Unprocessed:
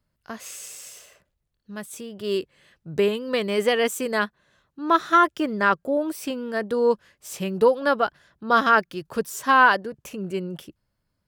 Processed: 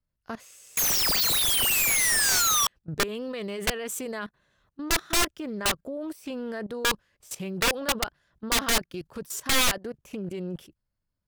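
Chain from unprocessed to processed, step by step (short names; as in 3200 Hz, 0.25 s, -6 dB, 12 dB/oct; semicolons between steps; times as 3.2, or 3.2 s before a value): painted sound fall, 0.77–2.67, 1100–6700 Hz -12 dBFS; level quantiser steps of 18 dB; wrapped overs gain 19.5 dB; low shelf 66 Hz +10.5 dB; Doppler distortion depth 0.29 ms; gain +2.5 dB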